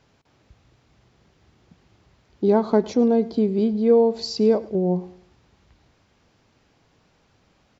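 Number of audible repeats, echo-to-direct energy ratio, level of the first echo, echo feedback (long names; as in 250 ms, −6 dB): 2, −19.5 dB, −20.0 dB, 36%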